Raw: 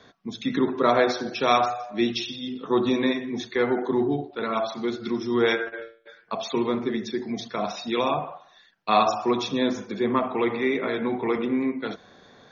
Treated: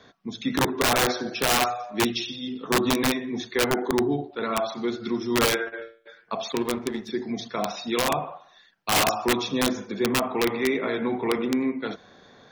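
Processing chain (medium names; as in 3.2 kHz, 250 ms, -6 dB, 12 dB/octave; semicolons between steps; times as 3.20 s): integer overflow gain 14.5 dB; 6.52–7.09 s: power-law waveshaper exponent 1.4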